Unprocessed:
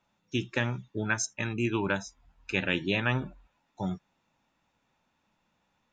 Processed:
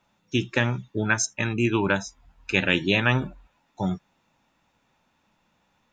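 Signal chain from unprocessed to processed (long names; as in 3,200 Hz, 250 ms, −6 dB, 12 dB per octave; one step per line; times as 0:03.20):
0:02.54–0:03.27: high-shelf EQ 6,300 Hz +8 dB
level +6 dB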